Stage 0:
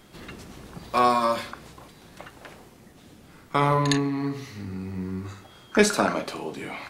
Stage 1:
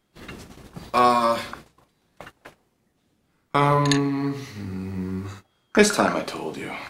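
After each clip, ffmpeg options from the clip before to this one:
ffmpeg -i in.wav -af "agate=range=-20dB:threshold=-42dB:ratio=16:detection=peak,volume=2.5dB" out.wav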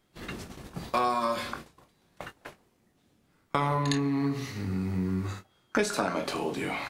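ffmpeg -i in.wav -filter_complex "[0:a]asplit=2[link_01][link_02];[link_02]adelay=22,volume=-10.5dB[link_03];[link_01][link_03]amix=inputs=2:normalize=0,acompressor=threshold=-25dB:ratio=4" out.wav

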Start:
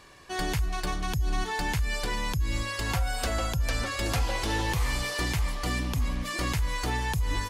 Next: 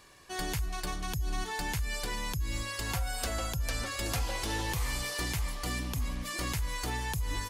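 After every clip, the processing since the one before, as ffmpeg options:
ffmpeg -i in.wav -af "highshelf=frequency=6400:gain=8.5,volume=-5.5dB" out.wav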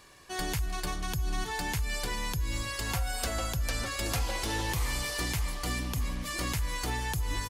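ffmpeg -i in.wav -af "aecho=1:1:306:0.141,volume=1.5dB" out.wav

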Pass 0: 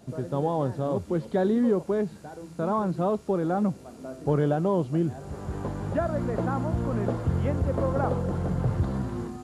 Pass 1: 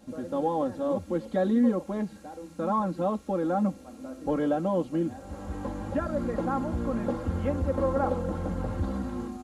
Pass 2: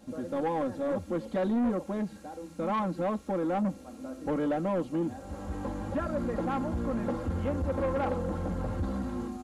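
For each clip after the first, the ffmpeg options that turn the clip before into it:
ffmpeg -i in.wav -af "aecho=1:1:3.7:0.99,volume=-4dB" out.wav
ffmpeg -i in.wav -af "asoftclip=type=tanh:threshold=-23.5dB" out.wav

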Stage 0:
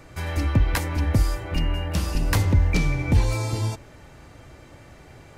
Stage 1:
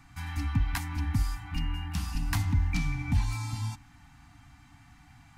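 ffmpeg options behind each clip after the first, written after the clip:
ffmpeg -i in.wav -af "afftfilt=real='re*(1-between(b*sr/4096,310,680))':imag='im*(1-between(b*sr/4096,310,680))':win_size=4096:overlap=0.75,volume=-7.5dB" out.wav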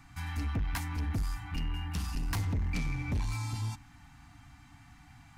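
ffmpeg -i in.wav -af "asoftclip=type=tanh:threshold=-27dB" out.wav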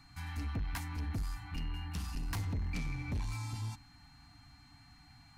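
ffmpeg -i in.wav -af "aeval=exprs='val(0)+0.00112*sin(2*PI*4200*n/s)':channel_layout=same,volume=-4.5dB" out.wav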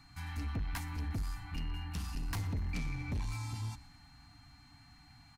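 ffmpeg -i in.wav -filter_complex "[0:a]asplit=6[link_01][link_02][link_03][link_04][link_05][link_06];[link_02]adelay=120,afreqshift=-42,volume=-20.5dB[link_07];[link_03]adelay=240,afreqshift=-84,volume=-25.1dB[link_08];[link_04]adelay=360,afreqshift=-126,volume=-29.7dB[link_09];[link_05]adelay=480,afreqshift=-168,volume=-34.2dB[link_10];[link_06]adelay=600,afreqshift=-210,volume=-38.8dB[link_11];[link_01][link_07][link_08][link_09][link_10][link_11]amix=inputs=6:normalize=0" out.wav

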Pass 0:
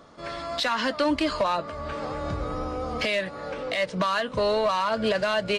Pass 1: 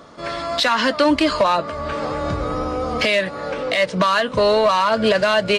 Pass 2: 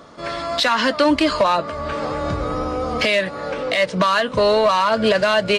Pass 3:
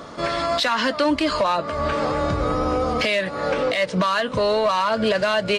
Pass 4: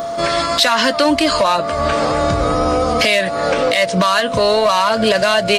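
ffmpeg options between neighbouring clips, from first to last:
ffmpeg -i in.wav -af "lowshelf=frequency=69:gain=-6,bandreject=frequency=790:width=25,volume=8dB" out.wav
ffmpeg -i in.wav -af anull out.wav
ffmpeg -i in.wav -af "alimiter=limit=-19dB:level=0:latency=1:release=409,volume=6dB" out.wav
ffmpeg -i in.wav -af "aeval=exprs='val(0)+0.0501*sin(2*PI*680*n/s)':channel_layout=same,aemphasis=mode=production:type=50kf,volume=5dB" out.wav

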